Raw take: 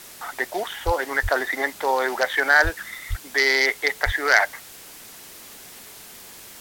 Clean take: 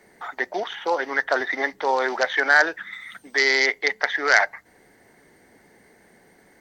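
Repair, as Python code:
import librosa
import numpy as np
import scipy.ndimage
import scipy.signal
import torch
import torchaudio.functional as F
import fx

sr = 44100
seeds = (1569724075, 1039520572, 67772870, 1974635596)

y = fx.fix_deplosive(x, sr, at_s=(0.85, 1.22, 2.63, 3.09, 4.05))
y = fx.noise_reduce(y, sr, print_start_s=4.62, print_end_s=5.12, reduce_db=13.0)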